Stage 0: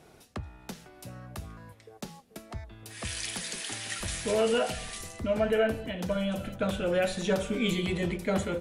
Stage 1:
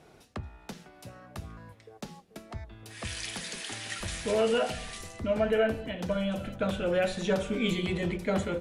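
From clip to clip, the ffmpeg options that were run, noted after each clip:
ffmpeg -i in.wav -af "highshelf=frequency=8900:gain=-9.5,bandreject=frequency=61.45:width_type=h:width=4,bandreject=frequency=122.9:width_type=h:width=4,bandreject=frequency=184.35:width_type=h:width=4,bandreject=frequency=245.8:width_type=h:width=4,bandreject=frequency=307.25:width_type=h:width=4,bandreject=frequency=368.7:width_type=h:width=4" out.wav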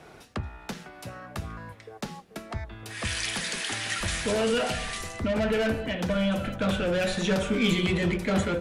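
ffmpeg -i in.wav -filter_complex "[0:a]equalizer=frequency=1500:width_type=o:width=1.8:gain=5,acrossover=split=280|3300[link_01][link_02][link_03];[link_02]asoftclip=type=tanh:threshold=-31.5dB[link_04];[link_01][link_04][link_03]amix=inputs=3:normalize=0,volume=5.5dB" out.wav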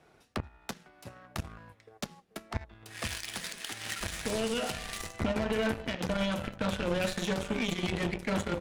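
ffmpeg -i in.wav -af "alimiter=limit=-24dB:level=0:latency=1:release=274,aeval=exprs='0.0631*(cos(1*acos(clip(val(0)/0.0631,-1,1)))-cos(1*PI/2))+0.0178*(cos(3*acos(clip(val(0)/0.0631,-1,1)))-cos(3*PI/2))':channel_layout=same,volume=3dB" out.wav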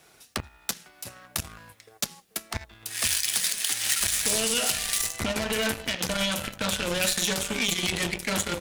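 ffmpeg -i in.wav -af "crystalizer=i=7:c=0,asoftclip=type=tanh:threshold=-10.5dB" out.wav

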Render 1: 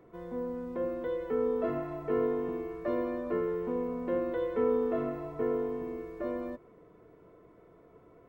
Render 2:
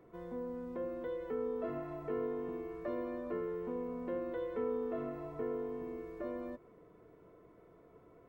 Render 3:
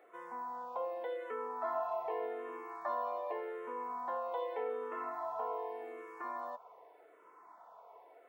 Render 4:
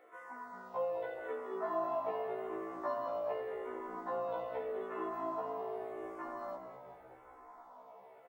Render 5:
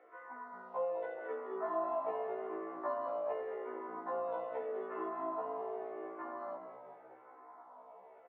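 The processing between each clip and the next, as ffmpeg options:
ffmpeg -i in.wav -af "acompressor=threshold=-39dB:ratio=1.5,volume=-3dB" out.wav
ffmpeg -i in.wav -filter_complex "[0:a]highpass=frequency=840:width_type=q:width=4.9,asplit=2[link_01][link_02];[link_02]afreqshift=-0.85[link_03];[link_01][link_03]amix=inputs=2:normalize=1,volume=6dB" out.wav
ffmpeg -i in.wav -filter_complex "[0:a]asplit=2[link_01][link_02];[link_02]asplit=8[link_03][link_04][link_05][link_06][link_07][link_08][link_09][link_10];[link_03]adelay=211,afreqshift=-56,volume=-9dB[link_11];[link_04]adelay=422,afreqshift=-112,volume=-13.3dB[link_12];[link_05]adelay=633,afreqshift=-168,volume=-17.6dB[link_13];[link_06]adelay=844,afreqshift=-224,volume=-21.9dB[link_14];[link_07]adelay=1055,afreqshift=-280,volume=-26.2dB[link_15];[link_08]adelay=1266,afreqshift=-336,volume=-30.5dB[link_16];[link_09]adelay=1477,afreqshift=-392,volume=-34.8dB[link_17];[link_10]adelay=1688,afreqshift=-448,volume=-39.1dB[link_18];[link_11][link_12][link_13][link_14][link_15][link_16][link_17][link_18]amix=inputs=8:normalize=0[link_19];[link_01][link_19]amix=inputs=2:normalize=0,afftfilt=real='re*1.73*eq(mod(b,3),0)':imag='im*1.73*eq(mod(b,3),0)':win_size=2048:overlap=0.75,volume=3dB" out.wav
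ffmpeg -i in.wav -af "highpass=230,lowpass=2100" out.wav

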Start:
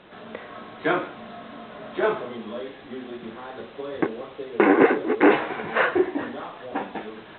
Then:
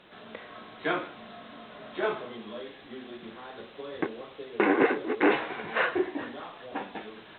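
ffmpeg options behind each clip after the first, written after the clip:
ffmpeg -i in.wav -af "highshelf=frequency=2900:gain=9.5,volume=-7dB" out.wav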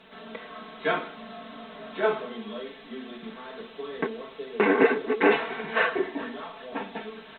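ffmpeg -i in.wav -af "aecho=1:1:4.5:0.97" out.wav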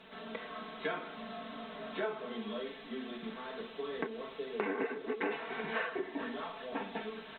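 ffmpeg -i in.wav -af "acompressor=threshold=-31dB:ratio=5,volume=-2.5dB" out.wav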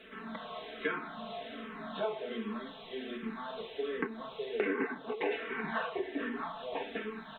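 ffmpeg -i in.wav -filter_complex "[0:a]asplit=2[link_01][link_02];[link_02]afreqshift=-1.3[link_03];[link_01][link_03]amix=inputs=2:normalize=1,volume=4.5dB" out.wav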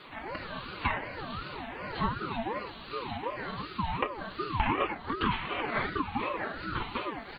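ffmpeg -i in.wav -af "aeval=exprs='val(0)*sin(2*PI*640*n/s+640*0.3/2.7*sin(2*PI*2.7*n/s))':channel_layout=same,volume=7dB" out.wav

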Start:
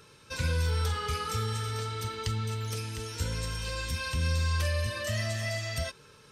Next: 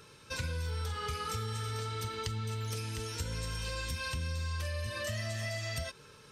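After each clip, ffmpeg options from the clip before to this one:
ffmpeg -i in.wav -af "acompressor=threshold=-33dB:ratio=6" out.wav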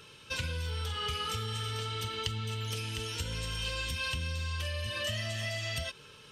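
ffmpeg -i in.wav -af "equalizer=frequency=3000:width_type=o:width=0.47:gain=11.5" out.wav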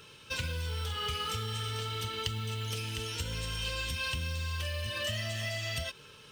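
ffmpeg -i in.wav -af "acrusher=bits=5:mode=log:mix=0:aa=0.000001" out.wav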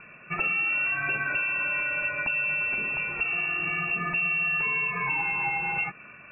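ffmpeg -i in.wav -af "lowpass=frequency=2400:width_type=q:width=0.5098,lowpass=frequency=2400:width_type=q:width=0.6013,lowpass=frequency=2400:width_type=q:width=0.9,lowpass=frequency=2400:width_type=q:width=2.563,afreqshift=-2800,volume=8.5dB" out.wav

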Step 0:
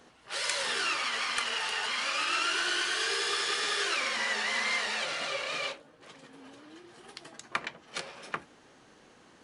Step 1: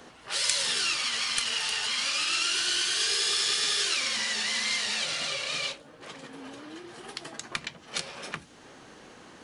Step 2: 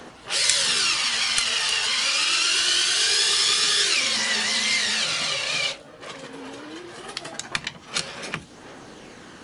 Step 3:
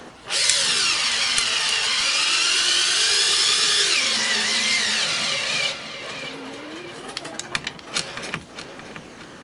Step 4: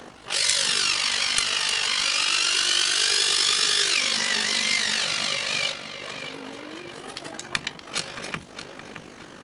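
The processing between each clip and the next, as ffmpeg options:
ffmpeg -i in.wav -filter_complex "[0:a]acrossover=split=200|3000[link_01][link_02][link_03];[link_02]acompressor=threshold=-46dB:ratio=5[link_04];[link_01][link_04][link_03]amix=inputs=3:normalize=0,volume=8dB" out.wav
ffmpeg -i in.wav -af "aphaser=in_gain=1:out_gain=1:delay=2.2:decay=0.26:speed=0.23:type=triangular,volume=6dB" out.wav
ffmpeg -i in.wav -filter_complex "[0:a]asplit=2[link_01][link_02];[link_02]adelay=621,lowpass=frequency=2700:poles=1,volume=-8dB,asplit=2[link_03][link_04];[link_04]adelay=621,lowpass=frequency=2700:poles=1,volume=0.52,asplit=2[link_05][link_06];[link_06]adelay=621,lowpass=frequency=2700:poles=1,volume=0.52,asplit=2[link_07][link_08];[link_08]adelay=621,lowpass=frequency=2700:poles=1,volume=0.52,asplit=2[link_09][link_10];[link_10]adelay=621,lowpass=frequency=2700:poles=1,volume=0.52,asplit=2[link_11][link_12];[link_12]adelay=621,lowpass=frequency=2700:poles=1,volume=0.52[link_13];[link_01][link_03][link_05][link_07][link_09][link_11][link_13]amix=inputs=7:normalize=0,volume=1.5dB" out.wav
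ffmpeg -i in.wav -af "tremolo=f=49:d=0.571" out.wav

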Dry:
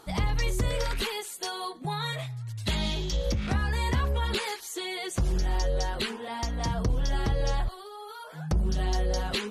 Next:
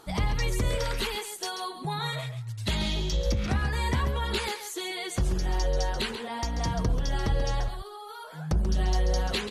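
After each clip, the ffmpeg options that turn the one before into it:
ffmpeg -i in.wav -af "aecho=1:1:136:0.335" out.wav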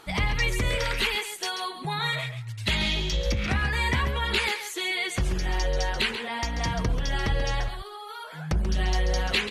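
ffmpeg -i in.wav -af "equalizer=frequency=2300:width=1.1:gain=10" out.wav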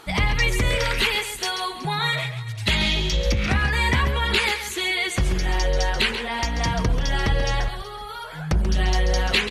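ffmpeg -i in.wav -af "aecho=1:1:374|748|1122:0.1|0.041|0.0168,volume=4.5dB" out.wav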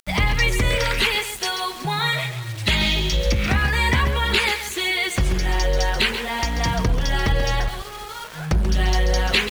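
ffmpeg -i in.wav -af "aeval=exprs='val(0)*gte(abs(val(0)),0.0188)':channel_layout=same,volume=1.5dB" out.wav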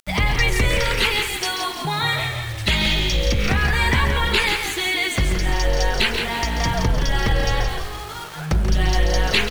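ffmpeg -i in.wav -filter_complex "[0:a]asplit=6[link_01][link_02][link_03][link_04][link_05][link_06];[link_02]adelay=171,afreqshift=-49,volume=-7dB[link_07];[link_03]adelay=342,afreqshift=-98,volume=-14.7dB[link_08];[link_04]adelay=513,afreqshift=-147,volume=-22.5dB[link_09];[link_05]adelay=684,afreqshift=-196,volume=-30.2dB[link_10];[link_06]adelay=855,afreqshift=-245,volume=-38dB[link_11];[link_01][link_07][link_08][link_09][link_10][link_11]amix=inputs=6:normalize=0" out.wav

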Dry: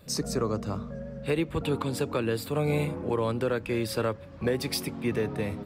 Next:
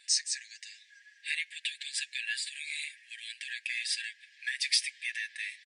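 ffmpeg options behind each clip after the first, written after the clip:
ffmpeg -i in.wav -af "afftfilt=real='re*between(b*sr/4096,1600,9900)':imag='im*between(b*sr/4096,1600,9900)':win_size=4096:overlap=0.75,aecho=1:1:7:0.65,volume=4dB" out.wav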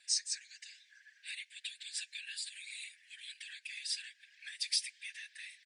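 ffmpeg -i in.wav -filter_complex "[0:a]acrossover=split=3100|3700|4500[link_01][link_02][link_03][link_04];[link_01]acompressor=threshold=-48dB:ratio=4[link_05];[link_05][link_02][link_03][link_04]amix=inputs=4:normalize=0,afftfilt=real='hypot(re,im)*cos(2*PI*random(0))':imag='hypot(re,im)*sin(2*PI*random(1))':win_size=512:overlap=0.75,volume=1.5dB" out.wav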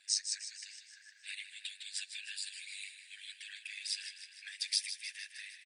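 ffmpeg -i in.wav -filter_complex "[0:a]tremolo=f=100:d=0.621,asplit=2[link_01][link_02];[link_02]aecho=0:1:154|308|462|616|770|924|1078:0.299|0.179|0.107|0.0645|0.0387|0.0232|0.0139[link_03];[link_01][link_03]amix=inputs=2:normalize=0,volume=2.5dB" out.wav

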